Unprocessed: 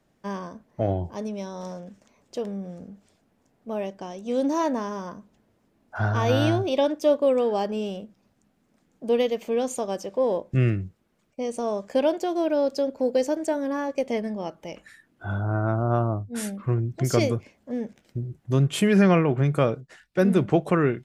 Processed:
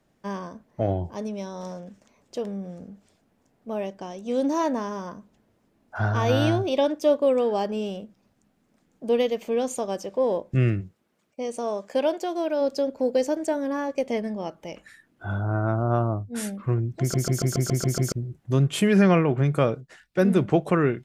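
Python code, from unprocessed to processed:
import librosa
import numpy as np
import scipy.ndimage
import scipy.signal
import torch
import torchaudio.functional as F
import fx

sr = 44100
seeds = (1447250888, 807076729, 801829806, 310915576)

y = fx.highpass(x, sr, hz=fx.line((10.8, 170.0), (12.6, 420.0)), slope=6, at=(10.8, 12.6), fade=0.02)
y = fx.edit(y, sr, fx.stutter_over(start_s=17.0, slice_s=0.14, count=8), tone=tone)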